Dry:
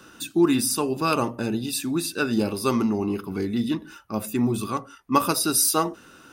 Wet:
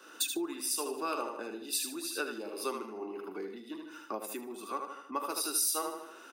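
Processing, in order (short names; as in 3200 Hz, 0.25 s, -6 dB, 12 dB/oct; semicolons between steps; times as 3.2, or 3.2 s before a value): on a send: feedback echo 77 ms, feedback 41%, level -6 dB; on the sum: compressor 10:1, threshold -36 dBFS, peak gain reduction 22.5 dB; HPF 330 Hz 24 dB/oct; three-band expander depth 70%; gain +4.5 dB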